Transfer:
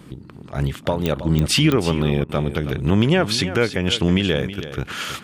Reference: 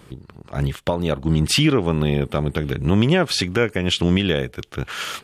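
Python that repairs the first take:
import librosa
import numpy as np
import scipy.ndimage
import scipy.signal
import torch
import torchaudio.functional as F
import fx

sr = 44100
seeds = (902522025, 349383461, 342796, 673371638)

y = fx.fix_declick_ar(x, sr, threshold=10.0)
y = fx.fix_interpolate(y, sr, at_s=(2.24,), length_ms=49.0)
y = fx.noise_reduce(y, sr, print_start_s=0.0, print_end_s=0.5, reduce_db=6.0)
y = fx.fix_echo_inverse(y, sr, delay_ms=322, level_db=-12.5)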